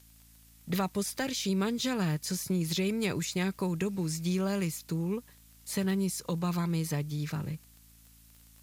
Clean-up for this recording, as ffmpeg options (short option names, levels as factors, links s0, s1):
-af "adeclick=t=4,bandreject=f=55.7:t=h:w=4,bandreject=f=111.4:t=h:w=4,bandreject=f=167.1:t=h:w=4,bandreject=f=222.8:t=h:w=4,bandreject=f=278.5:t=h:w=4,agate=range=0.0891:threshold=0.00316"